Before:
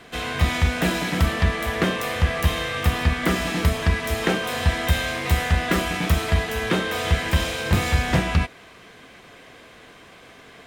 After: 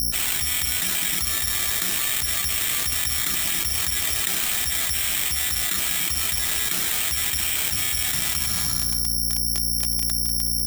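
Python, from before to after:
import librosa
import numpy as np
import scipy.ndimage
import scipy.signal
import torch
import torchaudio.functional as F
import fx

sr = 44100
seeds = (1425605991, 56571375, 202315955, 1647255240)

y = fx.peak_eq(x, sr, hz=13000.0, db=14.0, octaves=2.9)
y = fx.dmg_noise_colour(y, sr, seeds[0], colour='brown', level_db=-33.0)
y = fx.tone_stack(y, sr, knobs='5-5-5')
y = np.sign(y) * np.maximum(np.abs(y) - 10.0 ** (-37.0 / 20.0), 0.0)
y = fx.notch_comb(y, sr, f0_hz=520.0)
y = fx.add_hum(y, sr, base_hz=60, snr_db=30)
y = fx.hpss(y, sr, part='harmonic', gain_db=-8)
y = fx.rev_plate(y, sr, seeds[1], rt60_s=1.2, hf_ratio=0.65, predelay_ms=0, drr_db=16.0)
y = (np.kron(scipy.signal.resample_poly(y, 1, 8), np.eye(8)[0]) * 8)[:len(y)]
y = fx.env_flatten(y, sr, amount_pct=100)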